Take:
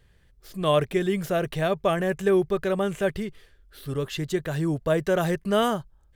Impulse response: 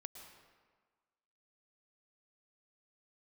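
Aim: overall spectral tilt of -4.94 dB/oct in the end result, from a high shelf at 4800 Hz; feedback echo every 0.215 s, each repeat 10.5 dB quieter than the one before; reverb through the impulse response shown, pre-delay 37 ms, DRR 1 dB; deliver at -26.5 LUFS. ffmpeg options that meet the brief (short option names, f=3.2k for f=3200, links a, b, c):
-filter_complex "[0:a]highshelf=f=4.8k:g=6.5,aecho=1:1:215|430|645:0.299|0.0896|0.0269,asplit=2[a][b];[1:a]atrim=start_sample=2205,adelay=37[c];[b][c]afir=irnorm=-1:irlink=0,volume=3.5dB[d];[a][d]amix=inputs=2:normalize=0,volume=-4dB"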